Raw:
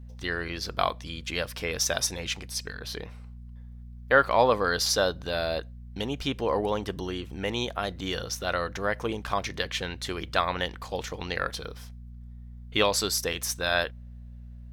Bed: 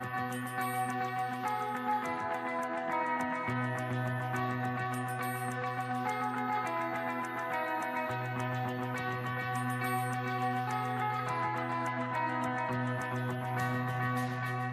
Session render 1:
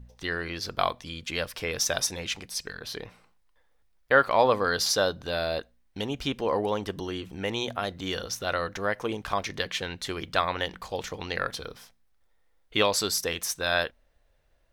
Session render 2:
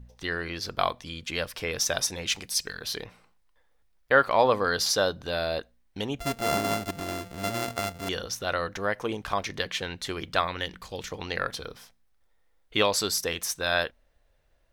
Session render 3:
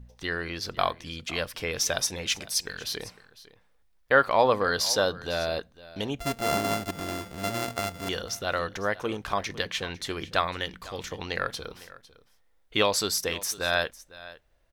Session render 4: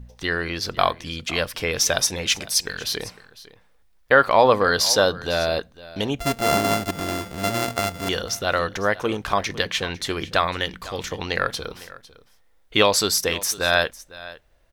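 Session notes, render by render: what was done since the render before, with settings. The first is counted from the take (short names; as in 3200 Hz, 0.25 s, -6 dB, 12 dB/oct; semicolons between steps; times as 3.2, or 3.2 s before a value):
de-hum 60 Hz, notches 4
2.27–3.04 high shelf 3100 Hz +7.5 dB; 6.19–8.09 sample sorter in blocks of 64 samples; 10.47–11.11 bell 760 Hz -8 dB 1.4 oct
echo 0.503 s -18.5 dB
gain +6.5 dB; limiter -3 dBFS, peak gain reduction 3 dB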